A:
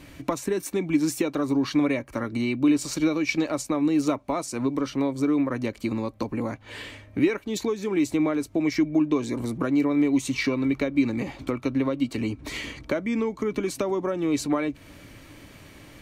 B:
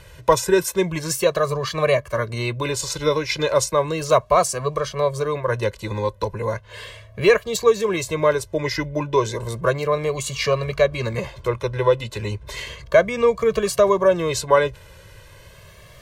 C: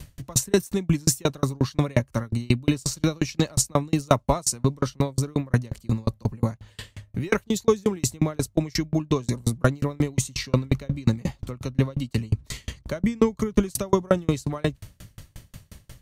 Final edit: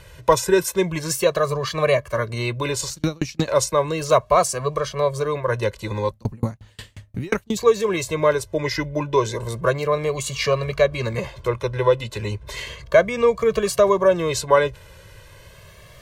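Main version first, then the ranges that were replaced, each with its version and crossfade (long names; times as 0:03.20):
B
0:02.90–0:03.48: punch in from C
0:06.11–0:07.57: punch in from C
not used: A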